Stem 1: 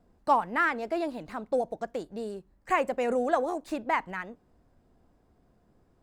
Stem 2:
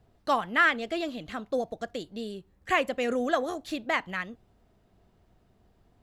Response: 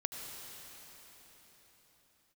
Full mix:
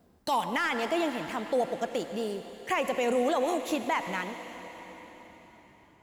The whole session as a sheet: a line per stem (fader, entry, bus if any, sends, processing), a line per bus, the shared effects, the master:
+0.5 dB, 0.00 s, send -6 dB, high-pass 73 Hz 12 dB/octave
-4.5 dB, 0.00 s, polarity flipped, send -16 dB, tilt EQ +4.5 dB/octave; waveshaping leveller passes 2; auto duck -18 dB, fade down 1.05 s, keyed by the first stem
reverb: on, pre-delay 70 ms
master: peak limiter -18.5 dBFS, peak gain reduction 9 dB

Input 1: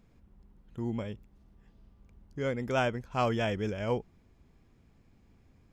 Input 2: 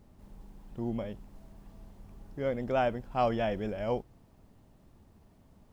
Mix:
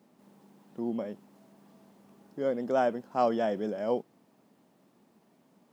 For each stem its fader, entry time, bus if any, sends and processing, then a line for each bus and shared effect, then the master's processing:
-8.5 dB, 0.00 s, no send, none
0.0 dB, 0.00 s, no send, none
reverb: none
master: high-pass 190 Hz 24 dB/octave

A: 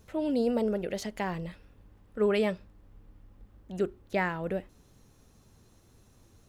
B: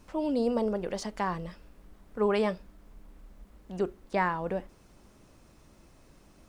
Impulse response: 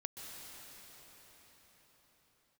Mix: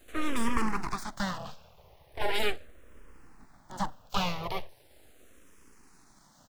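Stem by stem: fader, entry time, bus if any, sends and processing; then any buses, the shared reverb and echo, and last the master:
-2.0 dB, 0.00 s, no send, spectral peaks clipped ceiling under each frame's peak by 26 dB
+1.5 dB, 1.8 ms, no send, peaking EQ 650 Hz +5 dB 1.2 oct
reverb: none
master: full-wave rectifier; barber-pole phaser -0.39 Hz

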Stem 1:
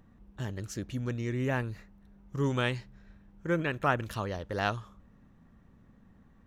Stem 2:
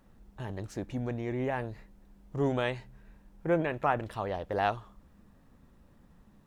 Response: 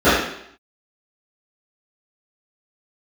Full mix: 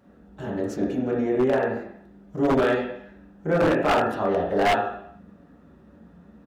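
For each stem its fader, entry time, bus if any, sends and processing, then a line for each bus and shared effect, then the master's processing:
-1.5 dB, 0.00 s, no send, compression, threshold -38 dBFS, peak gain reduction 16 dB
+0.5 dB, 4.4 ms, polarity flipped, send -20.5 dB, treble shelf 6.2 kHz -10 dB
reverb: on, RT60 0.70 s, pre-delay 3 ms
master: high-pass 100 Hz 12 dB/octave; wavefolder -14 dBFS

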